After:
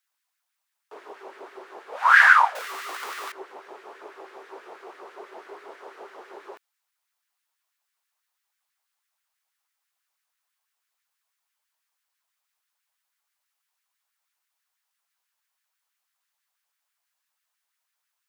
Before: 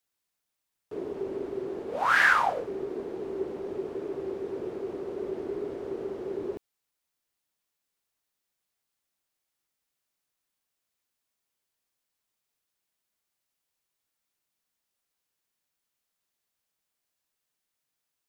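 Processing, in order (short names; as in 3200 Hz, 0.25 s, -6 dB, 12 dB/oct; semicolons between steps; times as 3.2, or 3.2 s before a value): 2.55–3.32 infinite clipping; LFO high-pass sine 6.1 Hz 800–1700 Hz; gain +2 dB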